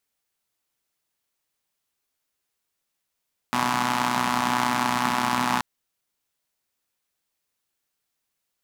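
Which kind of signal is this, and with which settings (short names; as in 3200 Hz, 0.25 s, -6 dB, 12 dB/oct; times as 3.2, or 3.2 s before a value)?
four-cylinder engine model, steady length 2.08 s, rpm 3700, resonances 230/920 Hz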